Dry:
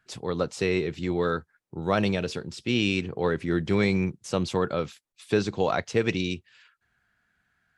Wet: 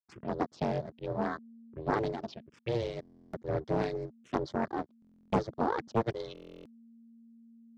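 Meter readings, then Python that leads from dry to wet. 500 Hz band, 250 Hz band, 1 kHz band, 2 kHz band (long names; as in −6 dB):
−7.0 dB, −9.0 dB, −2.0 dB, −12.0 dB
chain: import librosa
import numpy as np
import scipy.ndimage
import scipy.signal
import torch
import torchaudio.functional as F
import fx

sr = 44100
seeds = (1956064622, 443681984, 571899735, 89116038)

y = fx.dereverb_blind(x, sr, rt60_s=1.9)
y = fx.backlash(y, sr, play_db=-35.0)
y = y * np.sin(2.0 * np.pi * 230.0 * np.arange(len(y)) / sr)
y = fx.env_phaser(y, sr, low_hz=500.0, high_hz=2600.0, full_db=-30.0)
y = fx.bandpass_edges(y, sr, low_hz=110.0, high_hz=3900.0)
y = fx.buffer_glitch(y, sr, at_s=(3.01, 5.0, 6.33), block=1024, repeats=13)
y = fx.doppler_dist(y, sr, depth_ms=0.67)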